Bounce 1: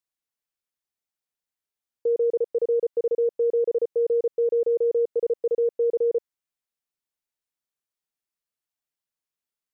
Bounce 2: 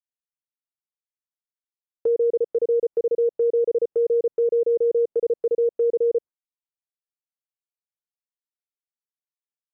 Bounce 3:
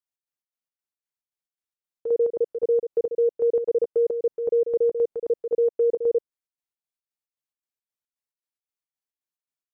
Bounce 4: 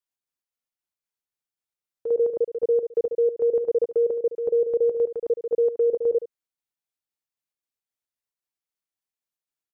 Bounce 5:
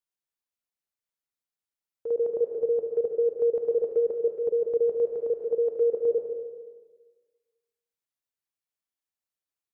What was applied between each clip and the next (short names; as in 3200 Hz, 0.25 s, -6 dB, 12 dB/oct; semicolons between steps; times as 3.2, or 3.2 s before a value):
treble ducked by the level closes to 640 Hz, closed at -23 dBFS; gate with hold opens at -33 dBFS; gain +3 dB
chopper 3.8 Hz, depth 60%, duty 60%
echo 72 ms -13 dB
plate-style reverb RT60 1.4 s, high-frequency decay 0.9×, pre-delay 0.12 s, DRR 4 dB; gain -4 dB